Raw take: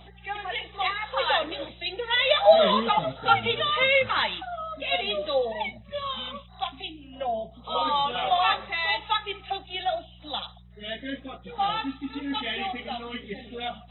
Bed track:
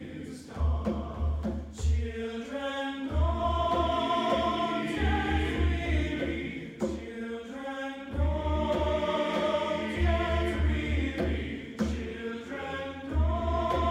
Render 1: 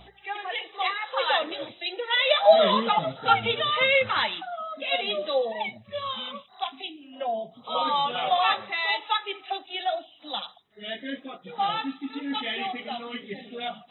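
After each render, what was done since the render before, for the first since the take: de-hum 60 Hz, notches 3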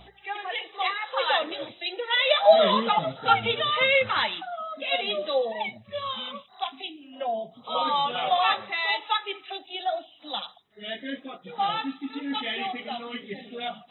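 9.38–9.94 s: peaking EQ 590 Hz -> 2.9 kHz -13 dB 0.55 oct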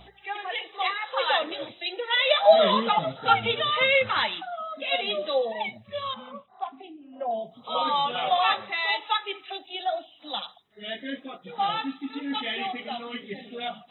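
6.14–7.31 s: low-pass 1.2 kHz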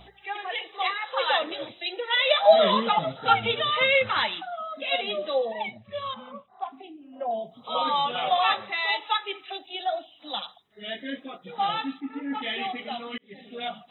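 5.02–6.70 s: distance through air 130 m; 12.00–12.42 s: low-pass 2.2 kHz 24 dB/octave; 13.18–13.60 s: fade in linear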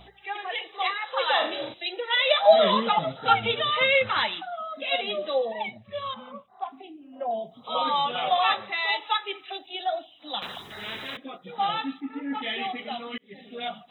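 1.32–1.74 s: flutter echo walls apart 6.6 m, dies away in 0.45 s; 10.42–11.17 s: spectrum-flattening compressor 10:1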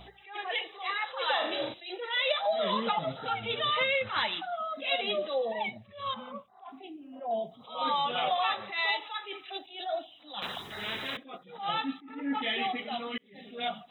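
compression 16:1, threshold -24 dBFS, peak gain reduction 15 dB; attacks held to a fixed rise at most 130 dB/s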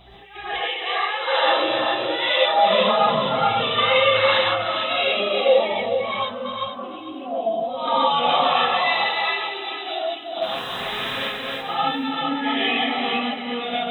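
backward echo that repeats 225 ms, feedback 49%, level -1 dB; gated-style reverb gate 170 ms rising, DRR -7 dB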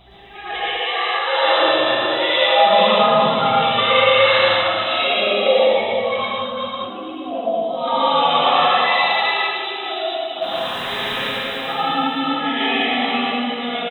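loudspeakers at several distances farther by 39 m -2 dB, 66 m -2 dB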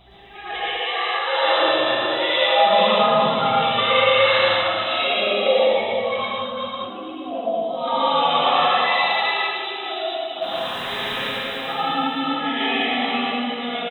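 trim -2.5 dB

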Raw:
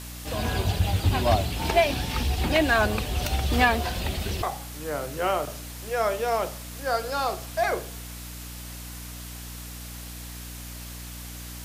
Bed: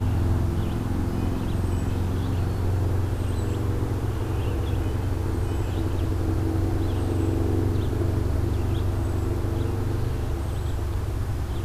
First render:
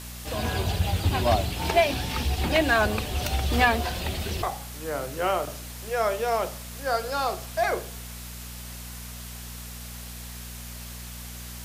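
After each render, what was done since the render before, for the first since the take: hum notches 50/100/150/200/250/300 Hz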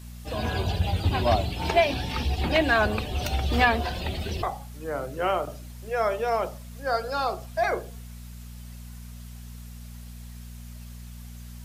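noise reduction 11 dB, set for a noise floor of -39 dBFS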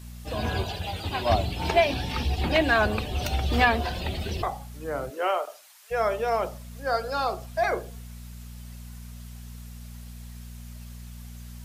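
0.64–1.30 s: bass shelf 310 Hz -10.5 dB; 5.09–5.90 s: high-pass 270 Hz -> 1.1 kHz 24 dB/octave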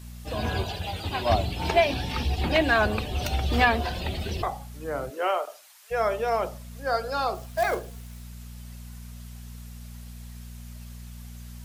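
7.35–8.23 s: short-mantissa float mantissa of 2-bit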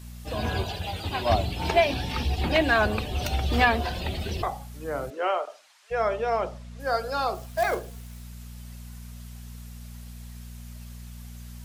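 5.10–6.80 s: distance through air 75 m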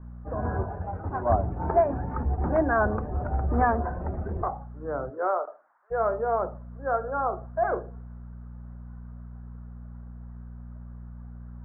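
steep low-pass 1.5 kHz 48 dB/octave; de-hum 110.2 Hz, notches 3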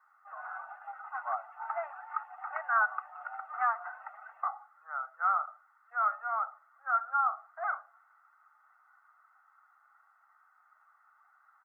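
steep high-pass 930 Hz 48 dB/octave; comb 1.5 ms, depth 88%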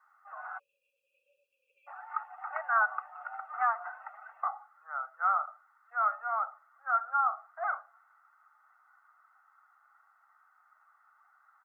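0.59–1.87 s: spectral selection erased 570–2300 Hz; dynamic bell 480 Hz, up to +4 dB, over -45 dBFS, Q 1.2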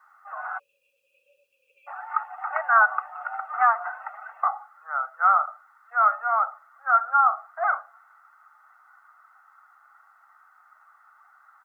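trim +9 dB

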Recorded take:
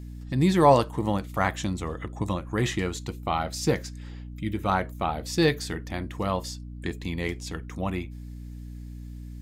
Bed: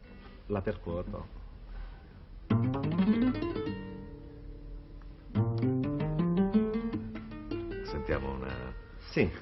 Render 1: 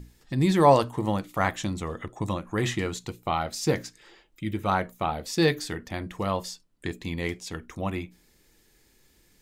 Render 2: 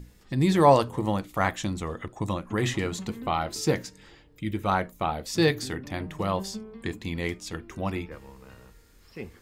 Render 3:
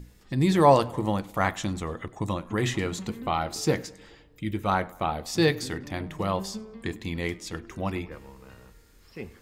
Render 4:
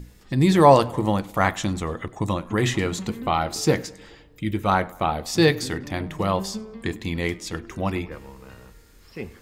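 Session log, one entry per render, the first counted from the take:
hum notches 60/120/180/240/300 Hz
add bed -11.5 dB
tape echo 101 ms, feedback 56%, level -21 dB, low-pass 3.7 kHz
trim +4.5 dB; peak limiter -2 dBFS, peak gain reduction 1 dB

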